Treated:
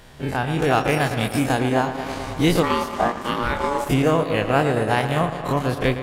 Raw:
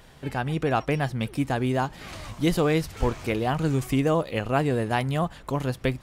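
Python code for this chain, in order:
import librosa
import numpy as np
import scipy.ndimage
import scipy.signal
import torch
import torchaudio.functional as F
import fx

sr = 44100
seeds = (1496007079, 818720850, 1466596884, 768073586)

p1 = fx.spec_dilate(x, sr, span_ms=60)
p2 = fx.high_shelf(p1, sr, hz=5000.0, db=9.5, at=(0.61, 1.59))
p3 = p2 + fx.echo_tape(p2, sr, ms=112, feedback_pct=85, wet_db=-8.0, lp_hz=4300.0, drive_db=4.0, wow_cents=21, dry=0)
p4 = fx.transient(p3, sr, attack_db=2, sustain_db=-6)
p5 = fx.ring_mod(p4, sr, carrier_hz=710.0, at=(2.62, 3.88), fade=0.02)
y = p5 * librosa.db_to_amplitude(1.0)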